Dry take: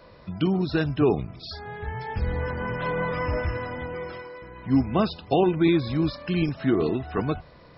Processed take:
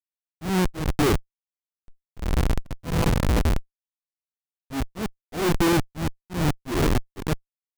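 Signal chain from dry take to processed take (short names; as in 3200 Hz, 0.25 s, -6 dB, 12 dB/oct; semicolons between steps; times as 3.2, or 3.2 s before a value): Schmitt trigger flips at -22 dBFS; auto swell 0.182 s; gain +7 dB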